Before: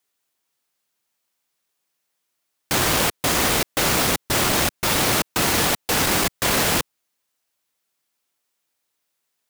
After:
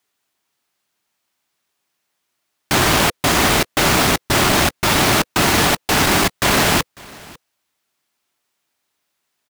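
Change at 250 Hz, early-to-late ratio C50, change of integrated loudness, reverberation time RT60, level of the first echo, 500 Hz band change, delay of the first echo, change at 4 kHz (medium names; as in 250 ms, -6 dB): +6.5 dB, no reverb, +4.0 dB, no reverb, -23.5 dB, +5.0 dB, 548 ms, +4.5 dB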